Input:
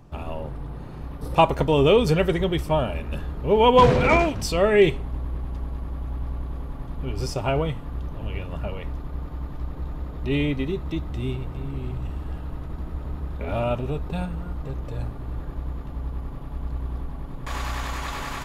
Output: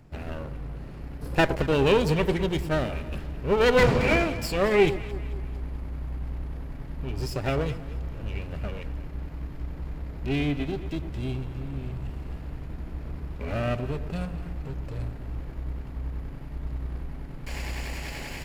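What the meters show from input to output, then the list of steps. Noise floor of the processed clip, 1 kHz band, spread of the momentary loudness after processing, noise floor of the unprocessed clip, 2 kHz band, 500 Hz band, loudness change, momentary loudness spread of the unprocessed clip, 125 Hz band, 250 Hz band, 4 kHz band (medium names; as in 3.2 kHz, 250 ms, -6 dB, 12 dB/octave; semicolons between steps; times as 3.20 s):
-38 dBFS, -8.0 dB, 17 LU, -36 dBFS, 0.0 dB, -4.0 dB, -3.5 dB, 17 LU, -3.0 dB, -2.5 dB, -3.0 dB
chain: comb filter that takes the minimum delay 0.4 ms; echo whose repeats swap between lows and highs 109 ms, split 1 kHz, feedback 65%, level -12 dB; trim -3 dB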